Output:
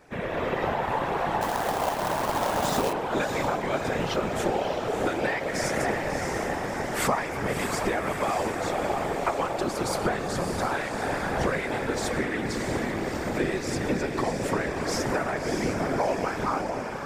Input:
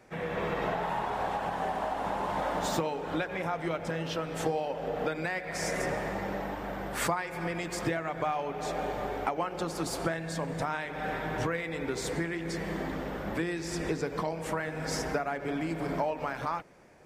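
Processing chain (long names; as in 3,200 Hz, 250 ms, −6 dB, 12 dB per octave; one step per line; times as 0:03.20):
feedback delay with all-pass diffusion 643 ms, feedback 59%, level −5 dB
random phases in short frames
0:01.41–0:02.93: log-companded quantiser 4 bits
level +3.5 dB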